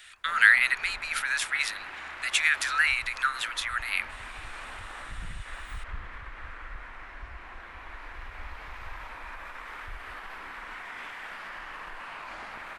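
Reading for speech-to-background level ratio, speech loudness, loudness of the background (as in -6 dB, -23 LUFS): 16.0 dB, -25.0 LUFS, -41.0 LUFS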